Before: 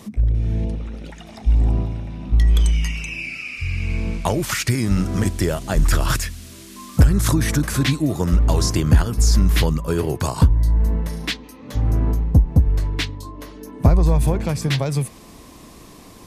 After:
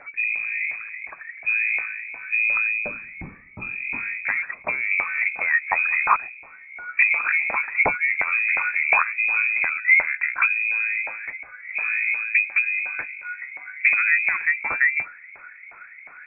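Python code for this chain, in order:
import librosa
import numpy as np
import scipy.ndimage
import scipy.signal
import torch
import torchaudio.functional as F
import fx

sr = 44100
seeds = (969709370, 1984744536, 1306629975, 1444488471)

y = fx.low_shelf(x, sr, hz=230.0, db=-9.0)
y = fx.filter_lfo_lowpass(y, sr, shape='saw_down', hz=2.8, low_hz=300.0, high_hz=1800.0, q=5.7)
y = fx.freq_invert(y, sr, carrier_hz=2500)
y = y * 10.0 ** (-1.5 / 20.0)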